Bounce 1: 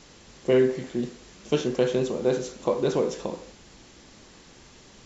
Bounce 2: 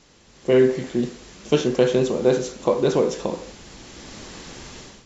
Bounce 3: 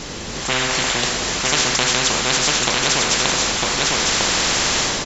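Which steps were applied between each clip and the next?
level rider gain up to 16 dB; trim -4 dB
delay 952 ms -7.5 dB; spectrum-flattening compressor 10:1; trim +3 dB

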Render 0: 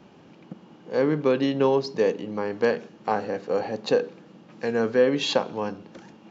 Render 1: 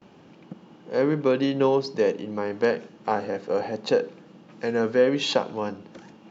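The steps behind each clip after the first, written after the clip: gate with hold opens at -45 dBFS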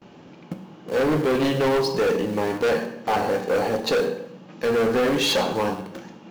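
in parallel at -9 dB: bit crusher 6-bit; on the sum: plate-style reverb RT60 0.73 s, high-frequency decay 0.9×, DRR 5.5 dB; overload inside the chain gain 22 dB; trim +4 dB

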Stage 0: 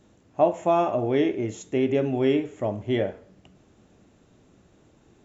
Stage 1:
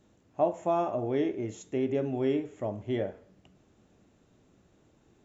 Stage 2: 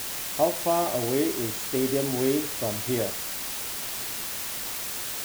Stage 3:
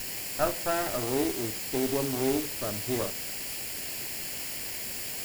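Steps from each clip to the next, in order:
dynamic bell 2.7 kHz, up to -5 dB, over -43 dBFS, Q 1.2; trim -6 dB
word length cut 6-bit, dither triangular; trim +3 dB
comb filter that takes the minimum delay 0.41 ms; trim -2 dB

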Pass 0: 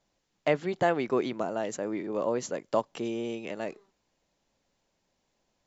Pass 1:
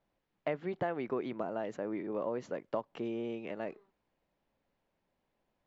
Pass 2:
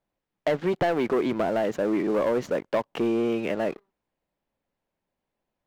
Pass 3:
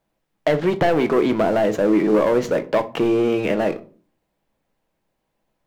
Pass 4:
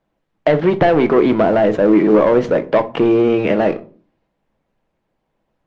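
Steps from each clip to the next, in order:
low-pass 2.5 kHz 12 dB/octave; compression 3:1, threshold -28 dBFS, peak gain reduction 7 dB; trim -3.5 dB
waveshaping leveller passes 3; trim +3 dB
in parallel at -3 dB: peak limiter -25 dBFS, peak gain reduction 8.5 dB; on the sum: simulated room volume 250 m³, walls furnished, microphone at 0.63 m; trim +3.5 dB
distance through air 160 m; trim +5.5 dB; Opus 32 kbps 48 kHz

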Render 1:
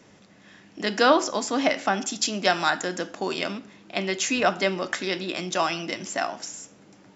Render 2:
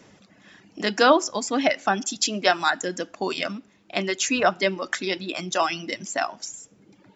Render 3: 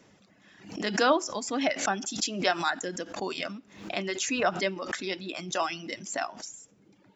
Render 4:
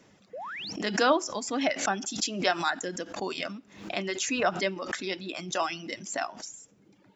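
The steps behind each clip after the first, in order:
reverb removal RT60 1.3 s; trim +2 dB
swell ahead of each attack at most 100 dB/s; trim -6.5 dB
painted sound rise, 0.33–0.73 s, 450–6100 Hz -38 dBFS

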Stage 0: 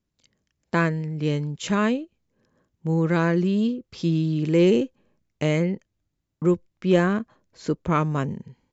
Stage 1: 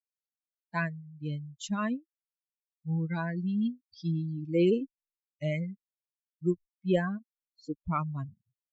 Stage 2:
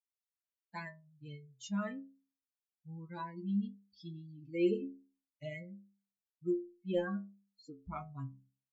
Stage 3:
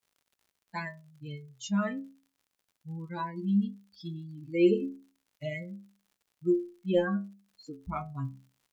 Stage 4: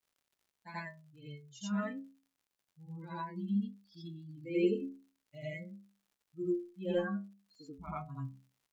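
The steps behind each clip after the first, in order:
expander on every frequency bin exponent 3; trim -3.5 dB
inharmonic resonator 64 Hz, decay 0.47 s, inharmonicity 0.008; trim +2 dB
crackle 90 per s -62 dBFS; trim +7.5 dB
reverse echo 84 ms -7.5 dB; trim -6.5 dB

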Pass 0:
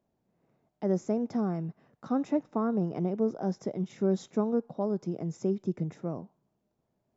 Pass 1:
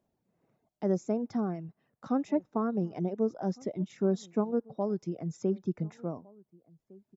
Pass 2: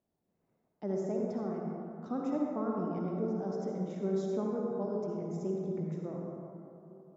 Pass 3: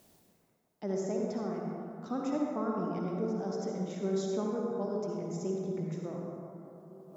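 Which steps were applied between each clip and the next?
reverb removal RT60 1.3 s; echo from a far wall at 250 m, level -24 dB
reverberation RT60 2.8 s, pre-delay 48 ms, DRR -2 dB; trim -7.5 dB
treble shelf 2 kHz +11 dB; reverse; upward compressor, threshold -46 dBFS; reverse

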